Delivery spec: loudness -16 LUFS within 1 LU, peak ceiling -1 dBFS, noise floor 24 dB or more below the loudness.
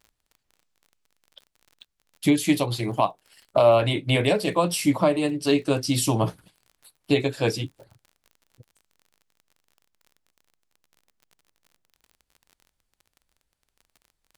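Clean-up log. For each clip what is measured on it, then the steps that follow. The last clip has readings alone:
ticks 33/s; loudness -23.0 LUFS; peak -6.5 dBFS; loudness target -16.0 LUFS
-> de-click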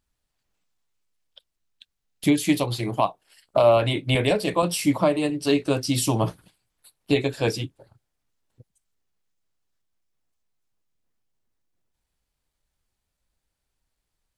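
ticks 0.070/s; loudness -23.0 LUFS; peak -6.5 dBFS; loudness target -16.0 LUFS
-> gain +7 dB; limiter -1 dBFS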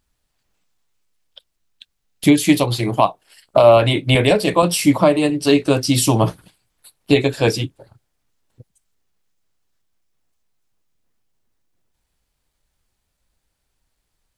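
loudness -16.0 LUFS; peak -1.0 dBFS; noise floor -74 dBFS

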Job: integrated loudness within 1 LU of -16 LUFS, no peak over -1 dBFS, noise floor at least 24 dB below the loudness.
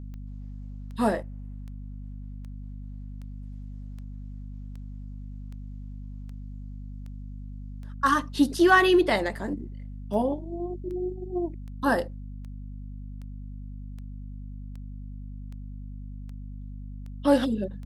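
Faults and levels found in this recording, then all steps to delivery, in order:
clicks 24; hum 50 Hz; harmonics up to 250 Hz; hum level -36 dBFS; loudness -25.5 LUFS; peak -7.0 dBFS; loudness target -16.0 LUFS
-> de-click; de-hum 50 Hz, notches 5; gain +9.5 dB; limiter -1 dBFS

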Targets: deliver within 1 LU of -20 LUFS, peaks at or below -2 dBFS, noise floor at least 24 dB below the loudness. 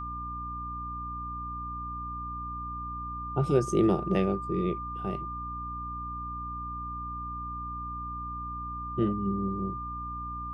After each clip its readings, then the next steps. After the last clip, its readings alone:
hum 60 Hz; harmonics up to 300 Hz; hum level -39 dBFS; steady tone 1200 Hz; tone level -35 dBFS; loudness -32.5 LUFS; peak -11.5 dBFS; loudness target -20.0 LUFS
-> de-hum 60 Hz, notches 5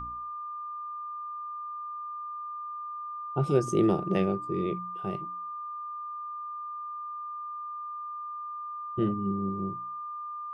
hum none; steady tone 1200 Hz; tone level -35 dBFS
-> notch 1200 Hz, Q 30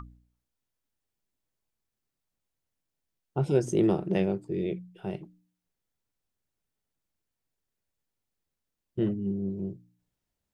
steady tone none; loudness -29.5 LUFS; peak -12.0 dBFS; loudness target -20.0 LUFS
-> gain +9.5 dB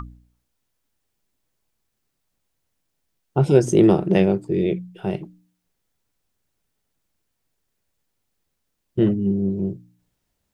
loudness -20.5 LUFS; peak -2.5 dBFS; noise floor -76 dBFS

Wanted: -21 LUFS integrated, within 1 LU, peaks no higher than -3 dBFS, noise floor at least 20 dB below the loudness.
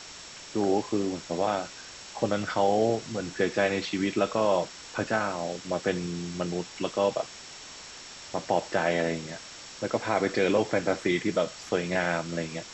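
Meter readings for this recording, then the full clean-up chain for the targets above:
steady tone 5500 Hz; tone level -50 dBFS; noise floor -45 dBFS; noise floor target -49 dBFS; loudness -28.5 LUFS; peak -11.5 dBFS; loudness target -21.0 LUFS
-> notch 5500 Hz, Q 30; denoiser 6 dB, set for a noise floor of -45 dBFS; gain +7.5 dB

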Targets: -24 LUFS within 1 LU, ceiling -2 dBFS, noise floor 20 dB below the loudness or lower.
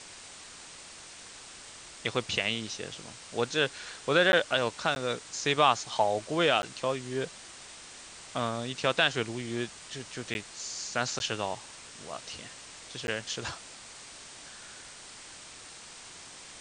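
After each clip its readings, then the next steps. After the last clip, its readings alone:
dropouts 6; longest dropout 11 ms; noise floor -48 dBFS; noise floor target -50 dBFS; loudness -30.0 LUFS; peak -9.0 dBFS; loudness target -24.0 LUFS
-> interpolate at 4.32/4.95/6.62/10.34/11.19/13.07, 11 ms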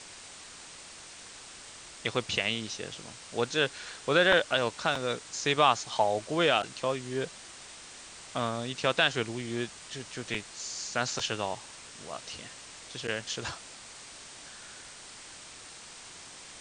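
dropouts 0; noise floor -48 dBFS; noise floor target -50 dBFS
-> denoiser 6 dB, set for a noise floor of -48 dBFS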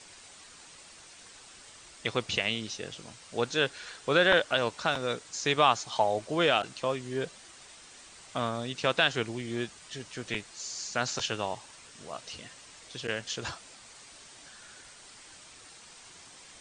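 noise floor -52 dBFS; loudness -30.0 LUFS; peak -9.0 dBFS; loudness target -24.0 LUFS
-> gain +6 dB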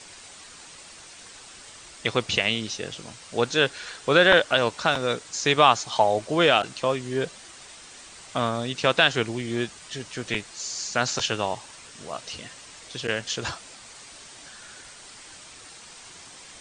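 loudness -24.0 LUFS; peak -3.0 dBFS; noise floor -46 dBFS

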